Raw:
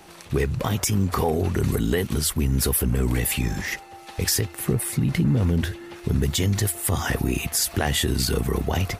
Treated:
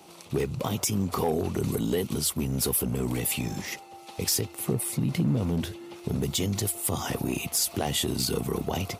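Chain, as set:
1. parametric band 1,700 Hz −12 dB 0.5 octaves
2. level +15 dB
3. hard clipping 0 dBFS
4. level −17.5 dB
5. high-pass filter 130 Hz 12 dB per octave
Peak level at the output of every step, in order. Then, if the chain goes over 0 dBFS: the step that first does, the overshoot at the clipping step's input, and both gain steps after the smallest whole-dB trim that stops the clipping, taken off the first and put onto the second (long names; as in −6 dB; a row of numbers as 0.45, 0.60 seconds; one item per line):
−10.5, +4.5, 0.0, −17.5, −13.5 dBFS
step 2, 4.5 dB
step 2 +10 dB, step 4 −12.5 dB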